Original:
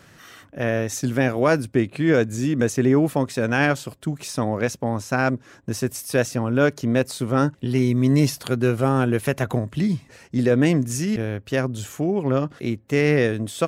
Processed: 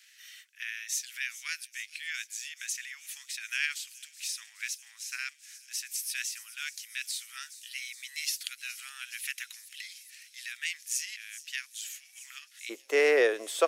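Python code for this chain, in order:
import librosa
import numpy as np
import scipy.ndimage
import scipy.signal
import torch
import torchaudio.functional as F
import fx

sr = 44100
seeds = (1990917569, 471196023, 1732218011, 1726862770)

y = fx.steep_highpass(x, sr, hz=fx.steps((0.0, 2000.0), (12.69, 400.0)), slope=36)
y = fx.echo_wet_highpass(y, sr, ms=419, feedback_pct=80, hz=5400.0, wet_db=-13.0)
y = F.gain(torch.from_numpy(y), -1.5).numpy()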